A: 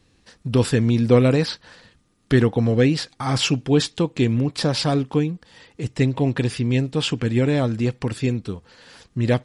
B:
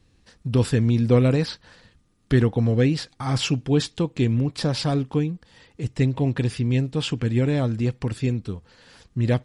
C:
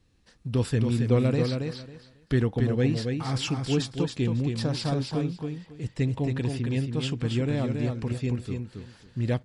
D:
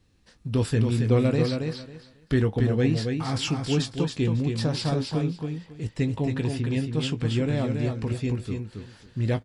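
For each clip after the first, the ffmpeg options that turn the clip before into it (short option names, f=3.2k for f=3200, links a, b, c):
-af "lowshelf=f=130:g=8.5,volume=-4.5dB"
-af "aecho=1:1:274|548|822:0.562|0.112|0.0225,volume=-5.5dB"
-filter_complex "[0:a]asplit=2[a][b];[b]adelay=19,volume=-9.5dB[c];[a][c]amix=inputs=2:normalize=0,volume=1.5dB"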